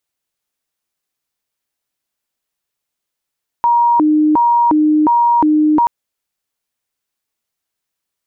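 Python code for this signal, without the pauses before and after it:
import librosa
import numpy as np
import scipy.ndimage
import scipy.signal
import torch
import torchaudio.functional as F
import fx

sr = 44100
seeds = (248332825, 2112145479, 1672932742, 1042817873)

y = fx.siren(sr, length_s=2.23, kind='hi-lo', low_hz=305.0, high_hz=947.0, per_s=1.4, wave='sine', level_db=-8.5)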